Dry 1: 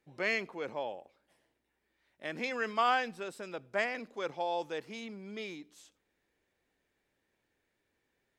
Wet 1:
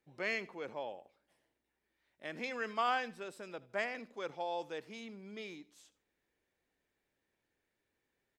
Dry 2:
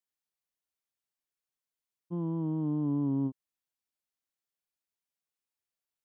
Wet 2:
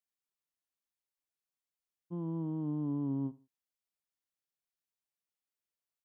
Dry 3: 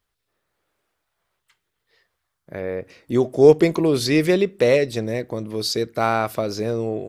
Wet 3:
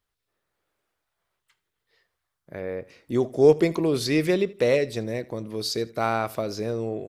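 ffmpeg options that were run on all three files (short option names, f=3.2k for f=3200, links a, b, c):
-af "aecho=1:1:79|158:0.0891|0.025,volume=-4.5dB"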